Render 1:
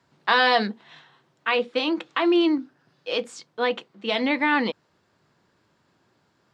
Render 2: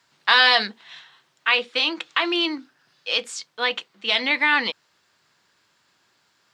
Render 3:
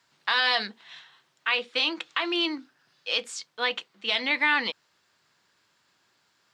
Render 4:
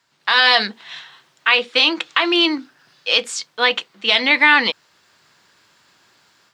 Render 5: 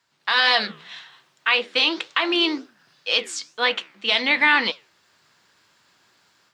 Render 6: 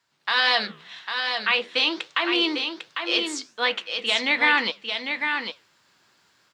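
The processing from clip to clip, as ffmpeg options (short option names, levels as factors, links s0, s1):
-af "tiltshelf=f=970:g=-9.5"
-af "alimiter=limit=0.376:level=0:latency=1:release=233,volume=0.668"
-af "dynaudnorm=f=190:g=3:m=3.35,volume=1.19"
-af "flanger=delay=7.5:depth=9.1:regen=-83:speed=1.9:shape=triangular"
-af "aecho=1:1:800:0.501,volume=0.75"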